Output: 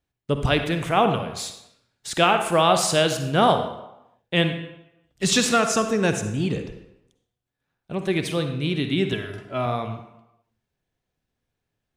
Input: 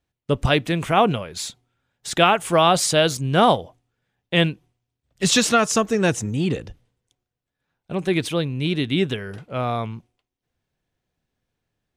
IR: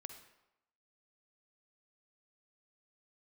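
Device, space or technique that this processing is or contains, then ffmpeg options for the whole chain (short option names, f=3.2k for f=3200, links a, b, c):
bathroom: -filter_complex "[0:a]asettb=1/sr,asplit=3[a][b][c];[a]atrim=end=9.124[d];[b]atrim=start=9.12:end=9.66,asetpts=PTS-STARTPTS,afade=t=in:d=0.004:c=qsin,afade=t=out:st=0.536:d=0.004:c=qsin,aecho=1:1:3:0.77,atrim=end_sample=23814[e];[c]atrim=start=9.656[f];[d][e]acrossfade=d=0.004:c1=hsin:c2=qsin[g];[g][f]acrossfade=d=0.004:c1=qsin:c2=hsin[h];[1:a]atrim=start_sample=2205[i];[h][i]afir=irnorm=-1:irlink=0,volume=3dB"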